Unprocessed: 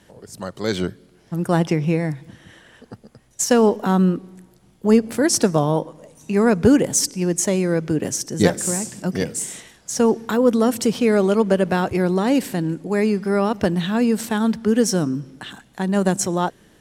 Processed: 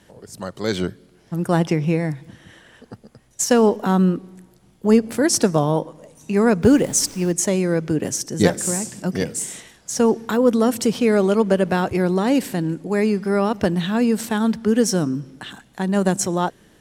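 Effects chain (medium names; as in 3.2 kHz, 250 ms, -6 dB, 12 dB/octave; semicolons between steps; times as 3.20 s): 6.62–7.31 s: added noise pink -44 dBFS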